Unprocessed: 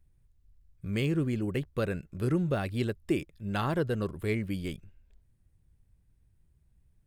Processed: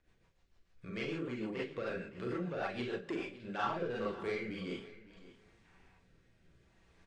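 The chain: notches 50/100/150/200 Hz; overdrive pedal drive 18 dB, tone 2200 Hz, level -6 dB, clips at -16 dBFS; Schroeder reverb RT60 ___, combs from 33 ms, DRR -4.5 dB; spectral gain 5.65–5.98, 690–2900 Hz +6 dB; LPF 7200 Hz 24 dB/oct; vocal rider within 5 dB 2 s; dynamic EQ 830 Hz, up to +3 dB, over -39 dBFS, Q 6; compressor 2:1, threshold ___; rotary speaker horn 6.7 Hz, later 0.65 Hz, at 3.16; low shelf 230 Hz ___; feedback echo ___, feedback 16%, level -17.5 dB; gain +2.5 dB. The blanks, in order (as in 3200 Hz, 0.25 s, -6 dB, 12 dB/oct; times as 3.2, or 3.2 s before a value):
0.33 s, -46 dBFS, -9 dB, 0.561 s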